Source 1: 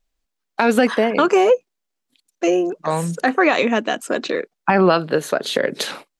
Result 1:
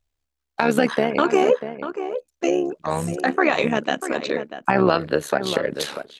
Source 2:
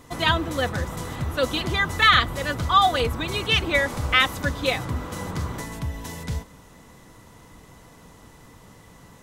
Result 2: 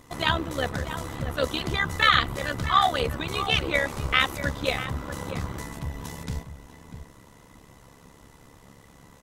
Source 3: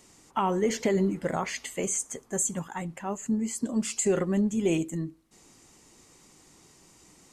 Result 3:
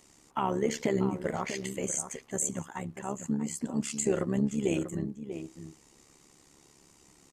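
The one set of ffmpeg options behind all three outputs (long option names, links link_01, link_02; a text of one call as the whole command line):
ffmpeg -i in.wav -filter_complex "[0:a]asplit=2[link_01][link_02];[link_02]adelay=641.4,volume=-10dB,highshelf=frequency=4000:gain=-14.4[link_03];[link_01][link_03]amix=inputs=2:normalize=0,tremolo=f=70:d=0.75" out.wav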